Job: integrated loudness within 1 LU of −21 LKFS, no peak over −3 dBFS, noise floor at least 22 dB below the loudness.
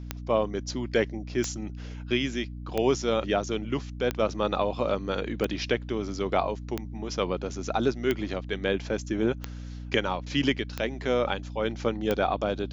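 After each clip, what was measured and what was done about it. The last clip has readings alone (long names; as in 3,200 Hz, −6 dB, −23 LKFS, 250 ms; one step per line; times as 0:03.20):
number of clicks 10; mains hum 60 Hz; hum harmonics up to 300 Hz; level of the hum −35 dBFS; integrated loudness −29.0 LKFS; sample peak −8.5 dBFS; target loudness −21.0 LKFS
→ click removal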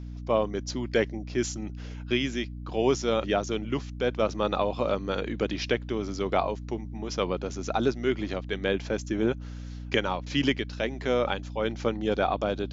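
number of clicks 0; mains hum 60 Hz; hum harmonics up to 300 Hz; level of the hum −35 dBFS
→ hum removal 60 Hz, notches 5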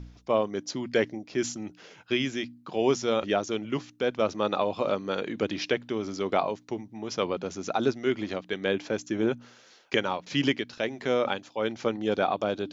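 mains hum none found; integrated loudness −29.0 LKFS; sample peak −8.5 dBFS; target loudness −21.0 LKFS
→ level +8 dB
brickwall limiter −3 dBFS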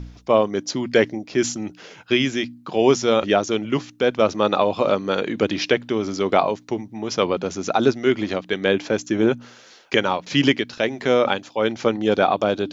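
integrated loudness −21.0 LKFS; sample peak −3.0 dBFS; background noise floor −48 dBFS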